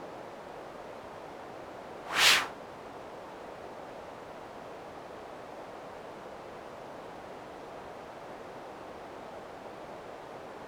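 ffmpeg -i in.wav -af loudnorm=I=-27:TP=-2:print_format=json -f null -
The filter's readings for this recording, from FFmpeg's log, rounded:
"input_i" : "-36.7",
"input_tp" : "-8.7",
"input_lra" : "14.3",
"input_thresh" : "-46.7",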